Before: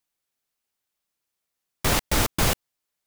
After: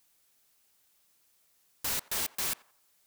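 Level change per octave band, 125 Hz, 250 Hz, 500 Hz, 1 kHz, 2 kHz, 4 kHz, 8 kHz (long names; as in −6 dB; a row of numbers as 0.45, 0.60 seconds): −25.0, −21.0, −18.0, −15.0, −12.0, −9.0, −6.0 decibels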